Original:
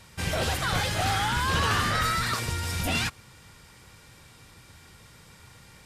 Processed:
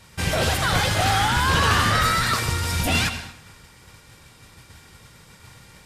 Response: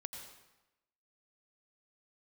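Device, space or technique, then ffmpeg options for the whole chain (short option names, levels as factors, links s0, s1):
keyed gated reverb: -filter_complex "[0:a]asplit=3[s0][s1][s2];[1:a]atrim=start_sample=2205[s3];[s1][s3]afir=irnorm=-1:irlink=0[s4];[s2]apad=whole_len=258400[s5];[s4][s5]sidechaingate=range=0.0224:threshold=0.00316:ratio=16:detection=peak,volume=1.41[s6];[s0][s6]amix=inputs=2:normalize=0"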